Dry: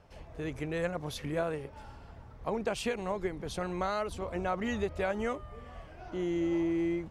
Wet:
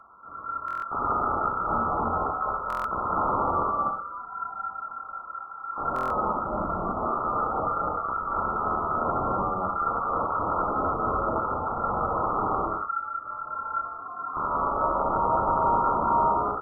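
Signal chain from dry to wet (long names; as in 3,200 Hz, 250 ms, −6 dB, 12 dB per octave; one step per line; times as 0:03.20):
reverb reduction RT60 0.85 s
wrap-around overflow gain 31.5 dB
floating-point word with a short mantissa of 2 bits
double-tracking delay 32 ms −7 dB
reverb whose tail is shaped and stops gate 140 ms rising, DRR −3.5 dB
voice inversion scrambler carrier 3,200 Hz
wrong playback speed 78 rpm record played at 33 rpm
buffer that repeats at 0:00.66/0:02.68/0:05.94, samples 1,024, times 6
level +6.5 dB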